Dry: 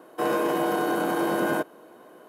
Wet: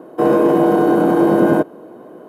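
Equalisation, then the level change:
tilt shelving filter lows +9.5 dB
+6.5 dB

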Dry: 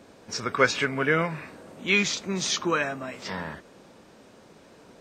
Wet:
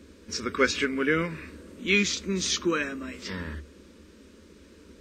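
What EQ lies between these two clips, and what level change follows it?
parametric band 73 Hz +15 dB 0.46 octaves
low-shelf EQ 210 Hz +8.5 dB
phaser with its sweep stopped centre 310 Hz, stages 4
0.0 dB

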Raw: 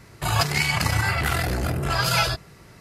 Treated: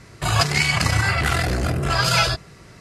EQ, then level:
Chebyshev low-pass filter 8,300 Hz, order 2
notch filter 870 Hz, Q 13
+4.0 dB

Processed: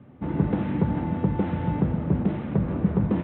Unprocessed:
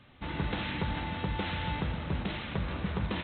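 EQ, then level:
band-pass filter 170–2,300 Hz
spectral tilt −2 dB per octave
tilt shelving filter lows +8 dB, about 810 Hz
+3.0 dB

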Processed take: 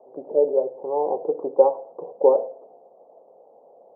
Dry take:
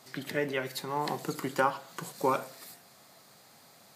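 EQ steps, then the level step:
high-pass with resonance 490 Hz, resonance Q 4.9
Butterworth low-pass 870 Hz 48 dB per octave
high-frequency loss of the air 450 metres
+6.0 dB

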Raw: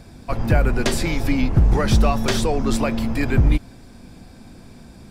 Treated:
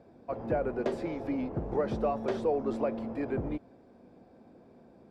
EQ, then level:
resonant band-pass 500 Hz, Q 1.5
−4.0 dB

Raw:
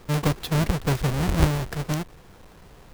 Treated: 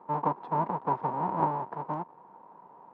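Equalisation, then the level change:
high-pass filter 180 Hz 24 dB per octave
low-pass with resonance 940 Hz, resonance Q 11
−8.5 dB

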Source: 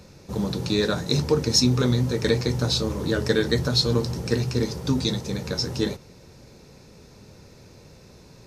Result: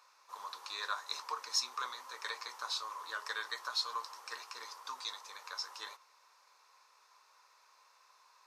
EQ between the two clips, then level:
four-pole ladder high-pass 1,000 Hz, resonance 75%
−1.0 dB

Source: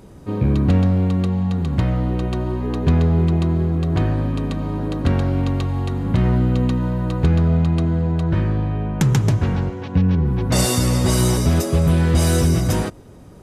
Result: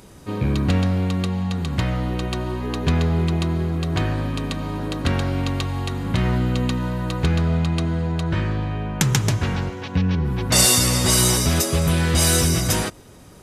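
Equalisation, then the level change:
tilt shelving filter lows −6 dB, about 1,200 Hz
+2.0 dB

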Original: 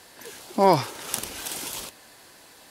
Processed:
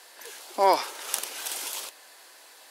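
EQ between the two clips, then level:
Bessel high-pass filter 540 Hz, order 4
0.0 dB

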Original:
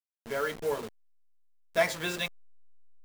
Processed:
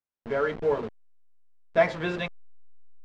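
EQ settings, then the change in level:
head-to-tape spacing loss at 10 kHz 34 dB
+7.5 dB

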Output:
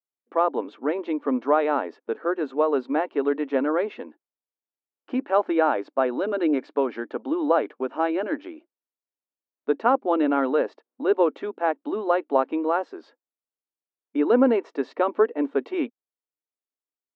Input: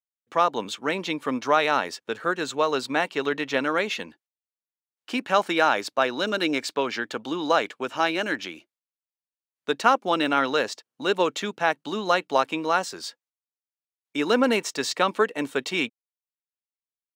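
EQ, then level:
linear-phase brick-wall high-pass 230 Hz
head-to-tape spacing loss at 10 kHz 43 dB
tilt shelving filter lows +6.5 dB, about 1,500 Hz
0.0 dB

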